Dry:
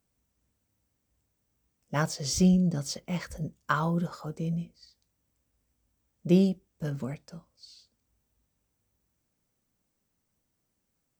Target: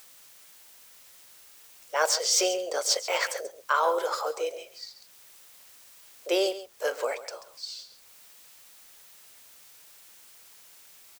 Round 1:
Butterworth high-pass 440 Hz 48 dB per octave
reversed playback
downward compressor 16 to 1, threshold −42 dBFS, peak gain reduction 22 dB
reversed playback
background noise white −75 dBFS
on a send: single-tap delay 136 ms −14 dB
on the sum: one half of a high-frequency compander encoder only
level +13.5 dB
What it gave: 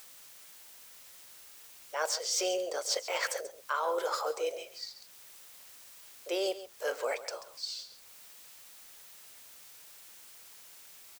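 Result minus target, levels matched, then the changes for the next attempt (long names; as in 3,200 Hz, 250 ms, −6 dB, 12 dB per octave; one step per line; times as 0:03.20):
downward compressor: peak gain reduction +8 dB
change: downward compressor 16 to 1, threshold −33.5 dBFS, peak gain reduction 14 dB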